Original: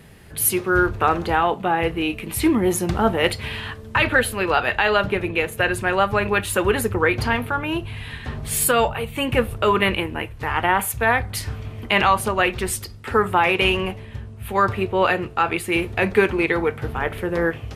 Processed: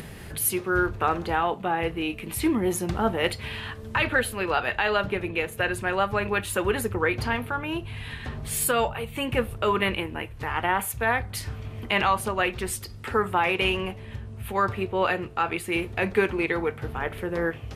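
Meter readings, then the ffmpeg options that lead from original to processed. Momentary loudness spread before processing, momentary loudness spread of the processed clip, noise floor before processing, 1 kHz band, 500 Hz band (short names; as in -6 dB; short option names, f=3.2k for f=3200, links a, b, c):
10 LU, 9 LU, -38 dBFS, -5.5 dB, -5.5 dB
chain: -af "acompressor=mode=upward:threshold=-24dB:ratio=2.5,volume=-5.5dB"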